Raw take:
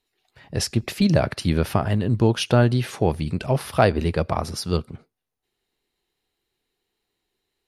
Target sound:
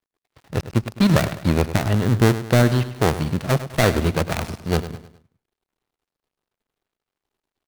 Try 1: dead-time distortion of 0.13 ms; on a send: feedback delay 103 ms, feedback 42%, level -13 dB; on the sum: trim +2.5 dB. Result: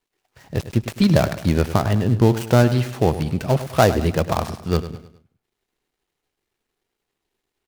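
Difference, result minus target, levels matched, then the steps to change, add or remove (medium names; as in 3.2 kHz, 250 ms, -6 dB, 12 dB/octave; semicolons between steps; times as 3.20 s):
dead-time distortion: distortion -8 dB
change: dead-time distortion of 0.46 ms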